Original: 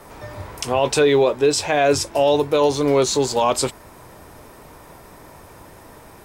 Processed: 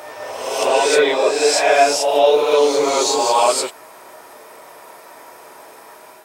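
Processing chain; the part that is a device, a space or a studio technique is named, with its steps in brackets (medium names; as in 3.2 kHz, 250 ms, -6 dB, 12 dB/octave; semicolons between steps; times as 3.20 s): ghost voice (reverse; reverberation RT60 1.4 s, pre-delay 6 ms, DRR -5.5 dB; reverse; high-pass 470 Hz 12 dB/octave); trim -1.5 dB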